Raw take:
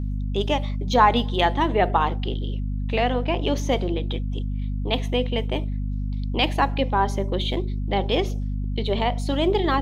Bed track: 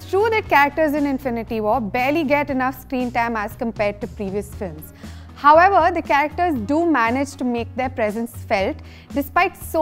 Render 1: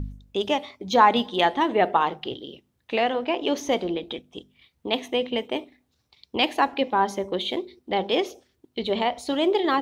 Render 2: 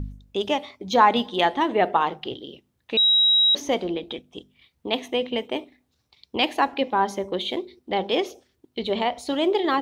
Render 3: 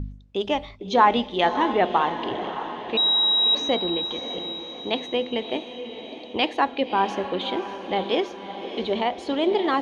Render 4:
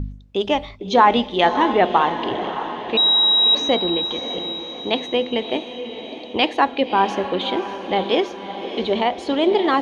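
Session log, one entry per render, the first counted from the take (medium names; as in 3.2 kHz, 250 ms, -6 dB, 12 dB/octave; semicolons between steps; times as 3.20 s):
de-hum 50 Hz, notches 5
2.97–3.55 s: bleep 3.84 kHz -14.5 dBFS
distance through air 88 m; echo that smears into a reverb 603 ms, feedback 56%, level -10 dB
trim +4.5 dB; peak limiter -2 dBFS, peak gain reduction 2 dB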